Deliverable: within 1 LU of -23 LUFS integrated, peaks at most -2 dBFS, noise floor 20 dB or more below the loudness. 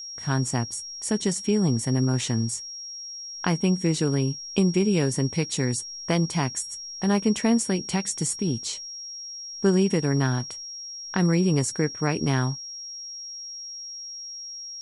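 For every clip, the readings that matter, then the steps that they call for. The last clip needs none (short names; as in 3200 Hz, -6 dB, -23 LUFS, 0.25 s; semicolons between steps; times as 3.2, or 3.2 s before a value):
steady tone 5600 Hz; tone level -35 dBFS; loudness -26.0 LUFS; peak -8.5 dBFS; loudness target -23.0 LUFS
-> notch 5600 Hz, Q 30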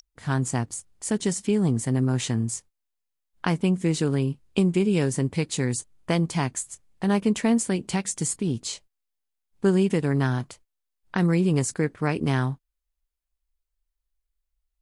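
steady tone none; loudness -25.5 LUFS; peak -8.5 dBFS; loudness target -23.0 LUFS
-> gain +2.5 dB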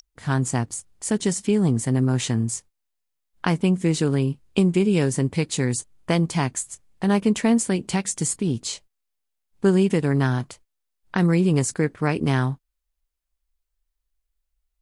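loudness -23.0 LUFS; peak -6.0 dBFS; noise floor -79 dBFS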